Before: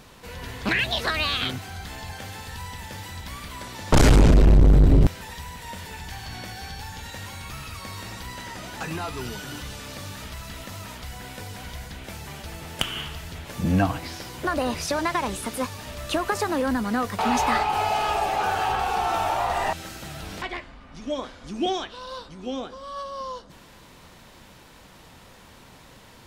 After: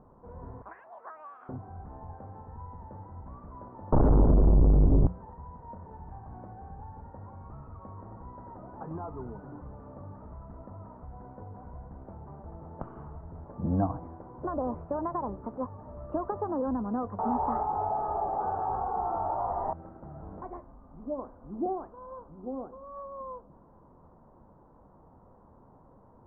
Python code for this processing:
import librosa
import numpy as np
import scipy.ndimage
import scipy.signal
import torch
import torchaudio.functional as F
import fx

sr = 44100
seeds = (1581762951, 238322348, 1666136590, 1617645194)

y = fx.highpass(x, sr, hz=1200.0, slope=12, at=(0.62, 1.49))
y = scipy.signal.sosfilt(scipy.signal.butter(6, 1100.0, 'lowpass', fs=sr, output='sos'), y)
y = fx.hum_notches(y, sr, base_hz=60, count=3)
y = F.gain(torch.from_numpy(y), -5.5).numpy()